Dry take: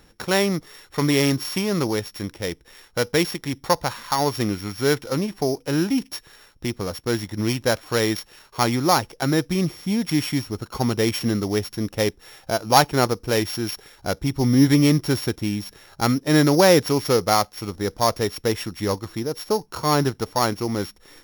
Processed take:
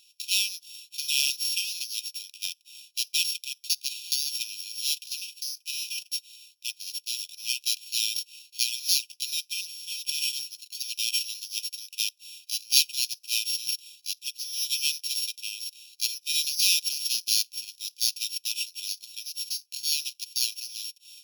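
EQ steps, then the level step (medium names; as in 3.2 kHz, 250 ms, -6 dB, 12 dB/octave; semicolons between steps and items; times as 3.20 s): brick-wall FIR high-pass 2.4 kHz; +2.5 dB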